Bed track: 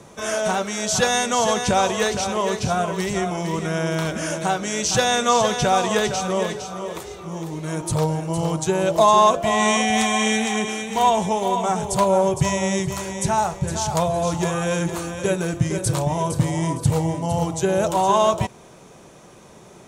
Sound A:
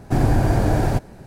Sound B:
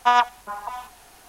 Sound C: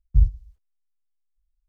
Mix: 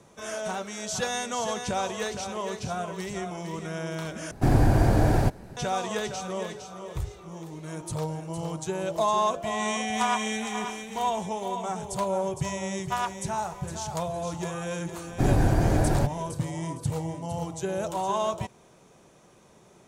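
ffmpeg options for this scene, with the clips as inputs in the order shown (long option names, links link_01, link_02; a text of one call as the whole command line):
ffmpeg -i bed.wav -i cue0.wav -i cue1.wav -i cue2.wav -filter_complex "[1:a]asplit=2[link_01][link_02];[2:a]asplit=2[link_03][link_04];[0:a]volume=-10dB[link_05];[3:a]highpass=110[link_06];[link_03]aecho=1:1:536:0.335[link_07];[link_05]asplit=2[link_08][link_09];[link_08]atrim=end=4.314[link_10];[link_01]atrim=end=1.26,asetpts=PTS-STARTPTS,volume=-2.5dB[link_11];[link_09]atrim=start=5.566[link_12];[link_06]atrim=end=1.68,asetpts=PTS-STARTPTS,volume=-5dB,afade=type=in:duration=0.004:curve=hsin,afade=type=out:start_time=1.676:duration=0.004:curve=hsin,adelay=6810[link_13];[link_07]atrim=end=1.28,asetpts=PTS-STARTPTS,volume=-10dB,afade=type=in:duration=0.004:curve=hsin,afade=type=out:start_time=1.276:duration=0.004:curve=hsin,adelay=438354S[link_14];[link_04]atrim=end=1.28,asetpts=PTS-STARTPTS,volume=-12dB,afade=type=in:duration=0.004:curve=hsin,afade=type=out:start_time=1.276:duration=0.004:curve=hsin,adelay=12850[link_15];[link_02]atrim=end=1.26,asetpts=PTS-STARTPTS,volume=-4.5dB,afade=type=in:duration=0.004:curve=hsin,afade=type=out:start_time=1.256:duration=0.004:curve=hsin,adelay=665028S[link_16];[link_10][link_11]acrossfade=duration=0.004:curve1=hsin:curve2=hsin[link_17];[link_17][link_12]acrossfade=duration=0.004:curve1=hsin:curve2=hsin[link_18];[link_18][link_13][link_14][link_15][link_16]amix=inputs=5:normalize=0" out.wav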